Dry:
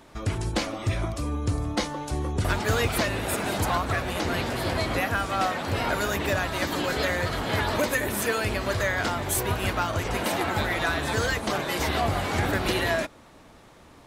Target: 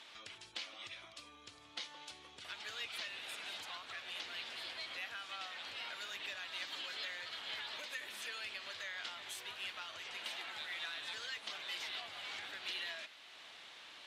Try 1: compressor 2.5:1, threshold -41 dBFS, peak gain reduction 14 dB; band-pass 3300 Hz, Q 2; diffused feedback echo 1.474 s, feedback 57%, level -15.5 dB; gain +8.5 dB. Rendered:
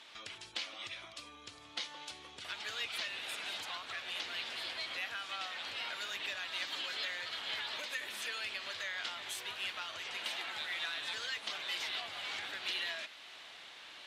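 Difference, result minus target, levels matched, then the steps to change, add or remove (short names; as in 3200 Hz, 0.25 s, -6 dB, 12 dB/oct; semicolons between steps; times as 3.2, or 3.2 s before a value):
compressor: peak gain reduction -4.5 dB
change: compressor 2.5:1, threshold -48.5 dBFS, peak gain reduction 18.5 dB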